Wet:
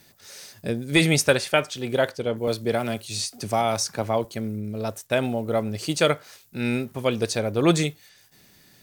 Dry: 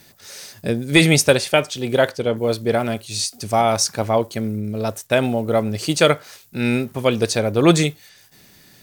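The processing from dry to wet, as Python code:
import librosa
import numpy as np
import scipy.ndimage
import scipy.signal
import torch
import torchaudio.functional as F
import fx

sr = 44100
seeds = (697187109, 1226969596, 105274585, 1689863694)

y = fx.peak_eq(x, sr, hz=1500.0, db=4.5, octaves=1.1, at=(1.18, 1.92))
y = fx.band_squash(y, sr, depth_pct=40, at=(2.47, 4.25))
y = y * librosa.db_to_amplitude(-5.5)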